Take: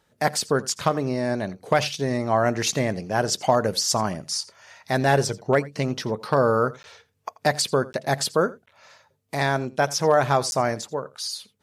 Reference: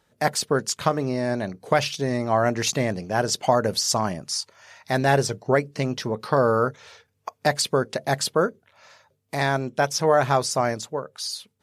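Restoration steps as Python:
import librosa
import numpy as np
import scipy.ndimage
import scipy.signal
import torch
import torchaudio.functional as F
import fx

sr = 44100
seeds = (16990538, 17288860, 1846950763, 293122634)

y = fx.fix_declip(x, sr, threshold_db=-8.0)
y = fx.fix_interpolate(y, sr, at_s=(6.83, 7.93, 8.66, 10.51), length_ms=11.0)
y = fx.fix_echo_inverse(y, sr, delay_ms=85, level_db=-20.5)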